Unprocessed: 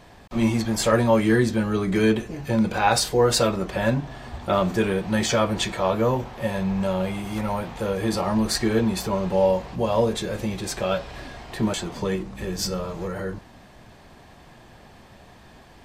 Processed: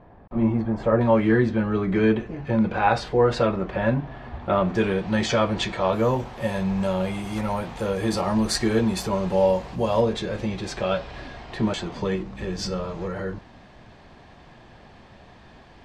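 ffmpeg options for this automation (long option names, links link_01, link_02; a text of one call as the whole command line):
ffmpeg -i in.wav -af "asetnsamples=nb_out_samples=441:pad=0,asendcmd='1.01 lowpass f 2400;4.75 lowpass f 4900;5.93 lowpass f 11000;10.01 lowpass f 4800',lowpass=1100" out.wav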